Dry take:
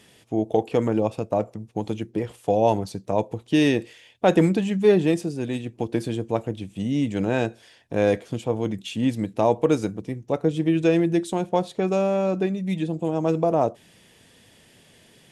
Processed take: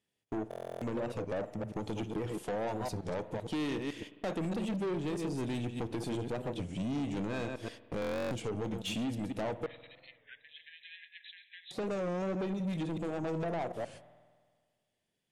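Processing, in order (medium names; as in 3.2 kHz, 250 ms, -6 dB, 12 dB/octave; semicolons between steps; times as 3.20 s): chunks repeated in reverse 126 ms, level -9 dB; gate -43 dBFS, range -31 dB; compression 6:1, threshold -26 dBFS, peak gain reduction 13.5 dB; saturation -31 dBFS, distortion -8 dB; 9.66–11.71 s: brick-wall FIR band-pass 1.6–4.1 kHz; spring tank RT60 1.7 s, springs 49 ms, chirp 55 ms, DRR 15.5 dB; buffer glitch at 0.49/8.00 s, samples 1024, times 13; warped record 33 1/3 rpm, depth 160 cents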